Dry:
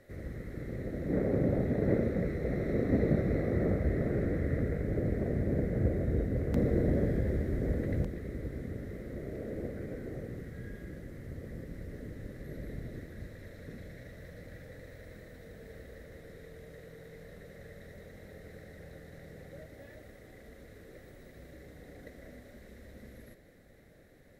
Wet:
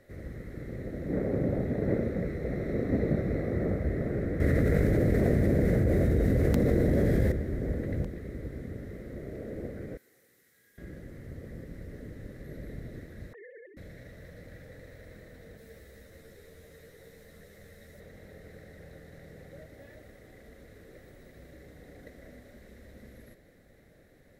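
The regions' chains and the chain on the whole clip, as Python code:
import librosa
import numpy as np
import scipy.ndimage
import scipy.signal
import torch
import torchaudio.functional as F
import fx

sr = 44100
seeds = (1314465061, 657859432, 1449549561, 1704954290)

y = fx.chain(x, sr, fx.high_shelf(hz=2900.0, db=8.0),
    fx.env_flatten(amount_pct=100), at=(4.4, 7.32))
y = fx.chain(y, sr, fx.differentiator(),
    fx.notch(hz=620.0, q=8.1), at=(9.97, 10.78))
y = fx.chain(y, sr, fx.sine_speech(),
    fx.lowpass(hz=2200.0, slope=24),
    fx.over_compress(threshold_db=-50.0, ratio=-1.0), at=(13.33, 13.77))
y = fx.chain(y, sr, fx.high_shelf(hz=3800.0, db=9.5),
    fx.ensemble(), at=(15.57, 18.0))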